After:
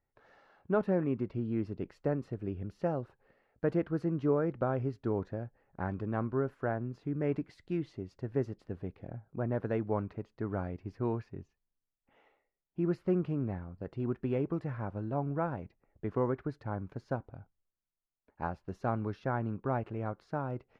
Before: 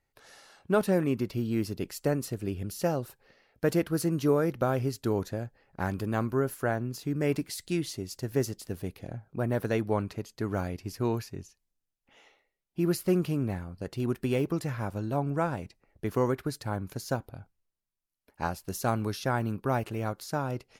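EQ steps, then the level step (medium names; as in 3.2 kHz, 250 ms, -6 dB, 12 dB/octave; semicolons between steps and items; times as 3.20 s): low-pass 1.6 kHz 12 dB/octave; -4.0 dB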